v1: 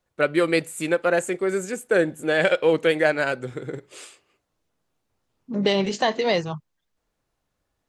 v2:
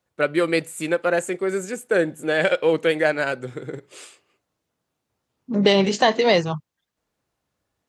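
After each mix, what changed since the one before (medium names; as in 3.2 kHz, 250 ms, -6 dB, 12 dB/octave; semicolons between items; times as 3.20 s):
second voice +4.5 dB; master: add high-pass 70 Hz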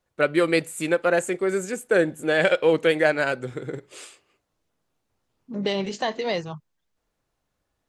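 second voice -9.0 dB; master: remove high-pass 70 Hz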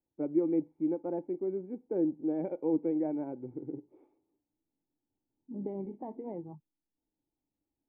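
master: add cascade formant filter u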